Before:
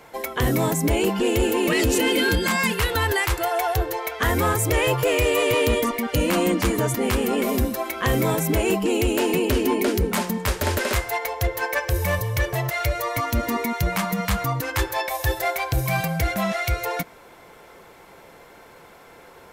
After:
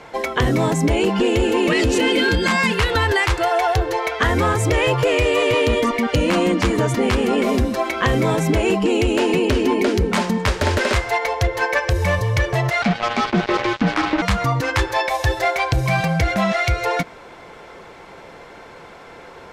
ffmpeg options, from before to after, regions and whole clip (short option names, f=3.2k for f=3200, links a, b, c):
-filter_complex "[0:a]asettb=1/sr,asplit=3[a][b][c];[a]atrim=end=12.824[d];[b]atrim=start=12.82:end=14.22,asetpts=PTS-STARTPTS,afade=t=in:d=0.004:c=qsin,afade=t=out:st=1.396:d=0.004:c=qsin,lowpass=f=2.1k:w=0.5412,lowpass=f=2.1k:w=1.3066,afreqshift=120,acrusher=bits=3:mix=0:aa=0.5[e];[c]atrim=start=14.216[f];[d][e]acrossfade=d=0.004:c1=hsin:c2=qsin[g];[g][f]acrossfade=d=0.004:c1=qsin:c2=hsin,lowpass=5.8k,acompressor=threshold=-21dB:ratio=6,volume=7dB"